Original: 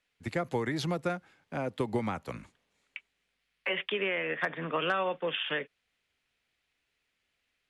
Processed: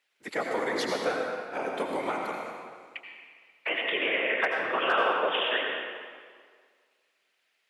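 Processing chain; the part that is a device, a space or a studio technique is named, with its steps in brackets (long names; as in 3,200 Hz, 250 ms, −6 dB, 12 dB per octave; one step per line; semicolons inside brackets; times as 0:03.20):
whispering ghost (random phases in short frames; high-pass filter 430 Hz 12 dB per octave; convolution reverb RT60 1.9 s, pre-delay 74 ms, DRR 0 dB)
level +3 dB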